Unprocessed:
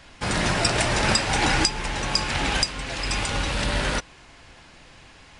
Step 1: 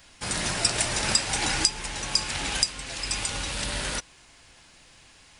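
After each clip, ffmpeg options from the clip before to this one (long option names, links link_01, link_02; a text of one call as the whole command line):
ffmpeg -i in.wav -af "aemphasis=mode=production:type=75kf,volume=-8.5dB" out.wav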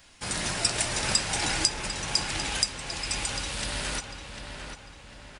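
ffmpeg -i in.wav -filter_complex "[0:a]asplit=2[link_01][link_02];[link_02]adelay=748,lowpass=frequency=3200:poles=1,volume=-6.5dB,asplit=2[link_03][link_04];[link_04]adelay=748,lowpass=frequency=3200:poles=1,volume=0.49,asplit=2[link_05][link_06];[link_06]adelay=748,lowpass=frequency=3200:poles=1,volume=0.49,asplit=2[link_07][link_08];[link_08]adelay=748,lowpass=frequency=3200:poles=1,volume=0.49,asplit=2[link_09][link_10];[link_10]adelay=748,lowpass=frequency=3200:poles=1,volume=0.49,asplit=2[link_11][link_12];[link_12]adelay=748,lowpass=frequency=3200:poles=1,volume=0.49[link_13];[link_01][link_03][link_05][link_07][link_09][link_11][link_13]amix=inputs=7:normalize=0,volume=-2dB" out.wav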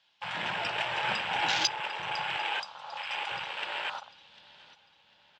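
ffmpeg -i in.wav -af "highpass=190,equalizer=frequency=270:width_type=q:width=4:gain=-10,equalizer=frequency=390:width_type=q:width=4:gain=-4,equalizer=frequency=870:width_type=q:width=4:gain=9,equalizer=frequency=1600:width_type=q:width=4:gain=5,equalizer=frequency=3300:width_type=q:width=4:gain=3,lowpass=frequency=4000:width=0.5412,lowpass=frequency=4000:width=1.3066,afwtdn=0.0251,aexciter=amount=3.8:drive=2.7:freq=2700,volume=-2dB" out.wav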